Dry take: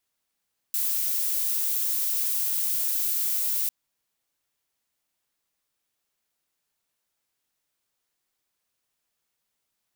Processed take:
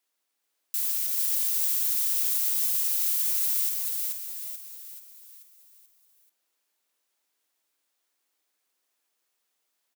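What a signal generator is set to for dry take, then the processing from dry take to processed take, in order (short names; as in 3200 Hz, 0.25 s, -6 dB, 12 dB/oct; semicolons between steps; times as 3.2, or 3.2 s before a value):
noise violet, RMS -26 dBFS 2.95 s
HPF 250 Hz 24 dB/oct; limiter -17.5 dBFS; on a send: feedback echo 0.434 s, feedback 47%, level -3 dB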